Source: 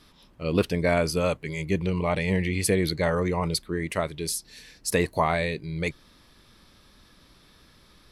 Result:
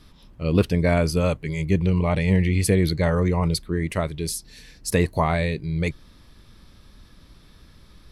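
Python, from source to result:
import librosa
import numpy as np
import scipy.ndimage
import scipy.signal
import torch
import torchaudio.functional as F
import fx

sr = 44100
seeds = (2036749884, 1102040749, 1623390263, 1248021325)

y = fx.low_shelf(x, sr, hz=180.0, db=11.5)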